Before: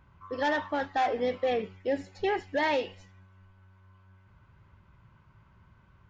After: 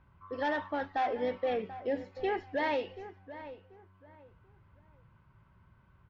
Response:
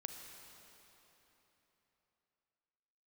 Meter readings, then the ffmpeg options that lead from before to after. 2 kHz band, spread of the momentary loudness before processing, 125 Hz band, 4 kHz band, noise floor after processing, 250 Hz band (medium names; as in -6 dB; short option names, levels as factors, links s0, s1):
-4.5 dB, 5 LU, -4.0 dB, -6.5 dB, -64 dBFS, -3.5 dB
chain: -filter_complex "[0:a]lowpass=f=6000:w=0.5412,lowpass=f=6000:w=1.3066,highshelf=f=4500:g=-9,asplit=2[s0][s1];[s1]adelay=736,lowpass=f=2000:p=1,volume=0.211,asplit=2[s2][s3];[s3]adelay=736,lowpass=f=2000:p=1,volume=0.26,asplit=2[s4][s5];[s5]adelay=736,lowpass=f=2000:p=1,volume=0.26[s6];[s0][s2][s4][s6]amix=inputs=4:normalize=0,volume=0.668"